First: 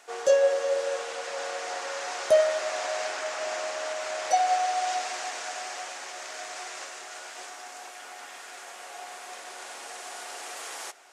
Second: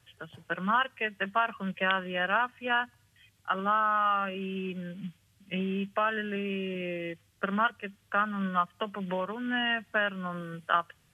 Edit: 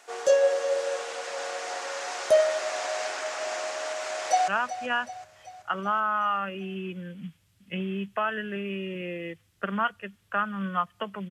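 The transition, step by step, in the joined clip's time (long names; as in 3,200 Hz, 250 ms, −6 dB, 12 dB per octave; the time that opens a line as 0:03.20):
first
0:04.05–0:04.48: delay throw 380 ms, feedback 55%, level −12.5 dB
0:04.48: continue with second from 0:02.28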